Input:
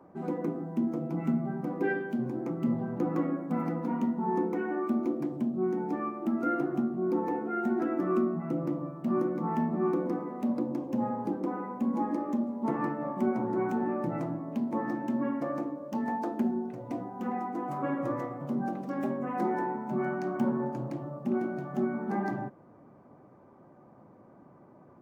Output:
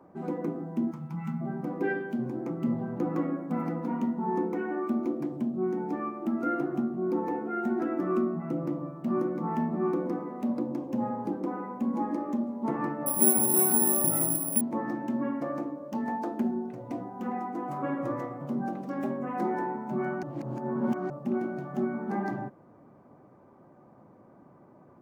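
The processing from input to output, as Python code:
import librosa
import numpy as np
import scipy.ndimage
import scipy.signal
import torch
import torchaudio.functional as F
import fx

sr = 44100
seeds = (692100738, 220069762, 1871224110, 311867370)

y = fx.spec_box(x, sr, start_s=0.91, length_s=0.5, low_hz=230.0, high_hz=790.0, gain_db=-17)
y = fx.resample_bad(y, sr, factor=4, down='none', up='zero_stuff', at=(13.06, 14.61))
y = fx.edit(y, sr, fx.reverse_span(start_s=20.23, length_s=0.87), tone=tone)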